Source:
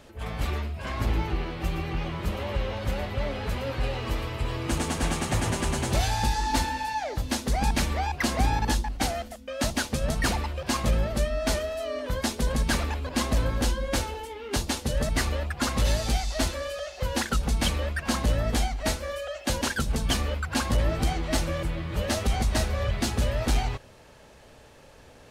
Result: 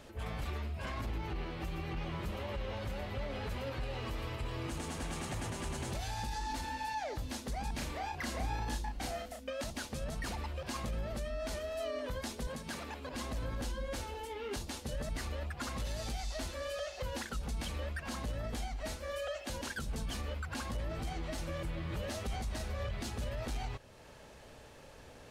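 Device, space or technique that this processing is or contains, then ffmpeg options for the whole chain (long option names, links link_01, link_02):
stacked limiters: -filter_complex "[0:a]alimiter=limit=-18.5dB:level=0:latency=1:release=467,alimiter=limit=-23dB:level=0:latency=1:release=27,alimiter=level_in=3.5dB:limit=-24dB:level=0:latency=1:release=376,volume=-3.5dB,asettb=1/sr,asplit=3[link_01][link_02][link_03];[link_01]atrim=end=7.754[link_04];[link_02]atrim=start=7.75:end=9.51,asetpts=PTS-STARTPTS,afade=type=in:duration=0.004:curve=qsin,afade=type=out:start_time=1.756:duration=0.004:curve=qsin,asplit=2[link_05][link_06];[link_06]adelay=34,volume=-4dB[link_07];[link_05][link_07]amix=inputs=2:normalize=0,atrim=end_sample=77616[link_08];[link_03]atrim=start=9.506[link_09];[link_04][link_08]acrossfade=duration=0.004:curve1=hsin:curve2=qsin[link_10];[link_10][link_09]acrossfade=duration=0.004:curve1=qsin:curve2=hsin,asettb=1/sr,asplit=3[link_11][link_12][link_13];[link_11]atrim=end=12.474[link_14];[link_12]atrim=start=12.47:end=13.13,asetpts=PTS-STARTPTS,afade=type=in:duration=0.004:curve=qsin,afade=type=out:start_time=0.656:duration=0.004:curve=qsin,highpass=130[link_15];[link_13]atrim=start=13.126[link_16];[link_14][link_15]acrossfade=duration=0.004:curve1=hsin:curve2=qsin[link_17];[link_17][link_16]acrossfade=duration=0.004:curve1=qsin:curve2=hsin,volume=-2.5dB"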